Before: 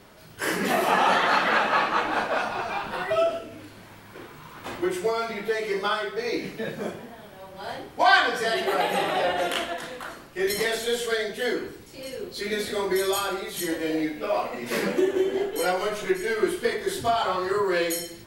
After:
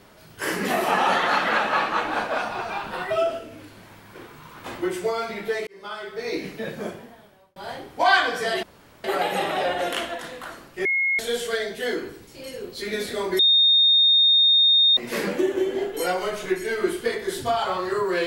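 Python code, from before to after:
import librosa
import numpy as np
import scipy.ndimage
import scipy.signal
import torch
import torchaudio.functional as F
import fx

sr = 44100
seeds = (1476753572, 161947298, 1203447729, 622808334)

y = fx.edit(x, sr, fx.fade_in_span(start_s=5.67, length_s=0.67),
    fx.fade_out_span(start_s=6.89, length_s=0.67),
    fx.insert_room_tone(at_s=8.63, length_s=0.41),
    fx.bleep(start_s=10.44, length_s=0.34, hz=2160.0, db=-19.0),
    fx.bleep(start_s=12.98, length_s=1.58, hz=3680.0, db=-13.5), tone=tone)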